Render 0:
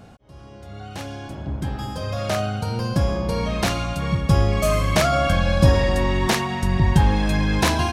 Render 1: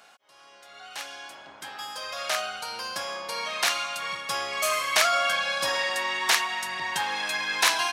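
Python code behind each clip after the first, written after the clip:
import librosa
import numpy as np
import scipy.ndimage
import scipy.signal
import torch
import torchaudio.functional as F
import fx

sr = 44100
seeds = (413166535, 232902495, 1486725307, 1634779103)

y = scipy.signal.sosfilt(scipy.signal.butter(2, 1200.0, 'highpass', fs=sr, output='sos'), x)
y = y * librosa.db_to_amplitude(2.5)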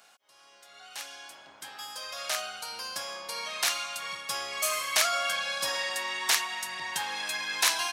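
y = fx.high_shelf(x, sr, hz=4400.0, db=9.0)
y = y * librosa.db_to_amplitude(-6.5)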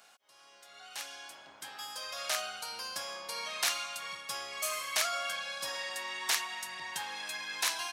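y = fx.rider(x, sr, range_db=4, speed_s=2.0)
y = y * librosa.db_to_amplitude(-5.5)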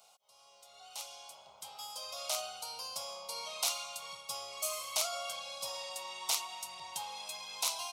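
y = fx.fixed_phaser(x, sr, hz=710.0, stages=4)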